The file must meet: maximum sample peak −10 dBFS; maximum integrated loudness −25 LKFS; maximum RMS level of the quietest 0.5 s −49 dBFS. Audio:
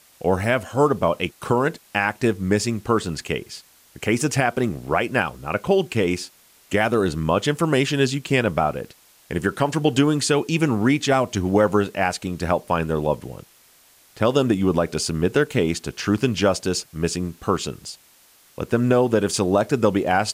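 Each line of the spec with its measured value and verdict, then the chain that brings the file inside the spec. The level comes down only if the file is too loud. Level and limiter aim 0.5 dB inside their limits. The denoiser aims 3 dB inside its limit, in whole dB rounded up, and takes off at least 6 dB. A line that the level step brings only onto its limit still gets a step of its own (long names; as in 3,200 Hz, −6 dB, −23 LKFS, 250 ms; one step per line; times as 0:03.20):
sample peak −6.0 dBFS: out of spec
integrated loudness −21.5 LKFS: out of spec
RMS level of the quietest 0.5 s −54 dBFS: in spec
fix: level −4 dB
brickwall limiter −10.5 dBFS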